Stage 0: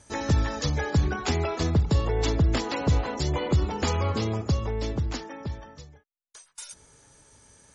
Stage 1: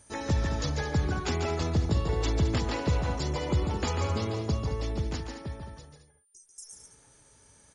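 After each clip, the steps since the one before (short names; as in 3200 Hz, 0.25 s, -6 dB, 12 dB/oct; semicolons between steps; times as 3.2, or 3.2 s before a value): whine 9200 Hz -54 dBFS; spectral repair 6.12–6.74, 420–5000 Hz both; loudspeakers at several distances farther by 49 m -6 dB, 74 m -11 dB; gain -4.5 dB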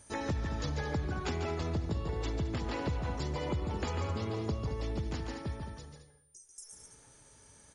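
dynamic EQ 6500 Hz, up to -5 dB, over -51 dBFS, Q 0.88; compressor 5:1, threshold -31 dBFS, peak gain reduction 10 dB; on a send at -15 dB: reverb RT60 1.1 s, pre-delay 40 ms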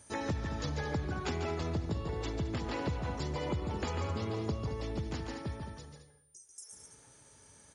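HPF 64 Hz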